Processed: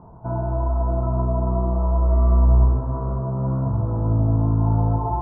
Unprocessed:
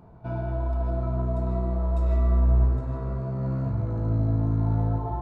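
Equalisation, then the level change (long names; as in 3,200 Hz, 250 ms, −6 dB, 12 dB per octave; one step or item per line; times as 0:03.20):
low-pass filter 1,300 Hz 24 dB per octave
high-frequency loss of the air 400 metres
parametric band 980 Hz +8 dB 0.66 octaves
+5.0 dB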